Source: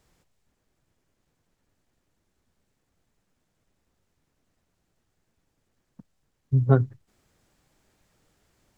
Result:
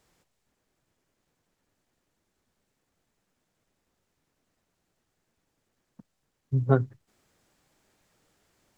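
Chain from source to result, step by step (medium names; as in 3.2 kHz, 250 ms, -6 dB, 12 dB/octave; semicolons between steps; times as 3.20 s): bass shelf 140 Hz -8.5 dB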